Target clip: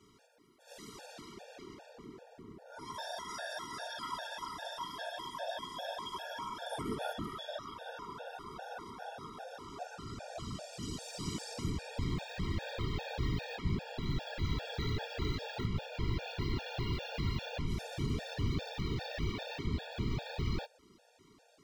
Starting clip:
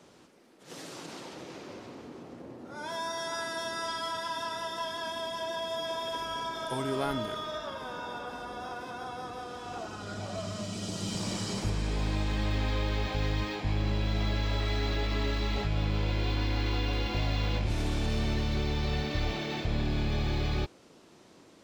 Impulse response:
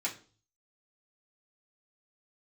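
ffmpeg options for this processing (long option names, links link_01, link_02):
-af "aexciter=amount=1.1:drive=4.6:freq=11000,afftfilt=real='hypot(re,im)*cos(2*PI*random(0))':imag='hypot(re,im)*sin(2*PI*random(1))':win_size=512:overlap=0.75,afftfilt=real='re*gt(sin(2*PI*2.5*pts/sr)*(1-2*mod(floor(b*sr/1024/470),2)),0)':imag='im*gt(sin(2*PI*2.5*pts/sr)*(1-2*mod(floor(b*sr/1024/470),2)),0)':win_size=1024:overlap=0.75,volume=2.5dB"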